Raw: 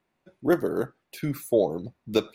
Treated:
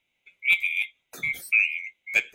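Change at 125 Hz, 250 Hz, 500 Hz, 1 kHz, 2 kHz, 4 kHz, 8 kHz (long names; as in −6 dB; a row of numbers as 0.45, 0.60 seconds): below −15 dB, below −25 dB, below −25 dB, below −15 dB, +19.5 dB, +4.5 dB, +2.0 dB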